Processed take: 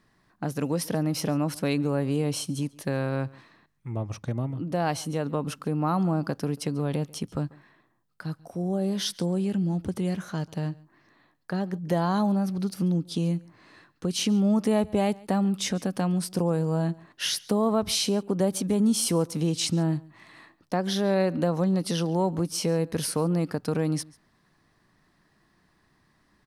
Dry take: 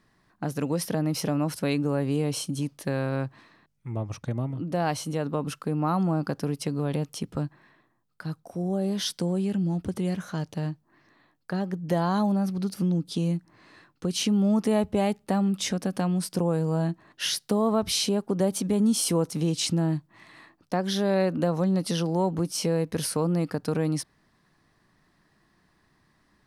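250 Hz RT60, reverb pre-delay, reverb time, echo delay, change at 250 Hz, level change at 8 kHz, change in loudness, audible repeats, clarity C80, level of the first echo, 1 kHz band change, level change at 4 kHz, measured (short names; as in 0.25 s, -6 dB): none, none, none, 0.14 s, 0.0 dB, 0.0 dB, 0.0 dB, 1, none, -23.5 dB, 0.0 dB, 0.0 dB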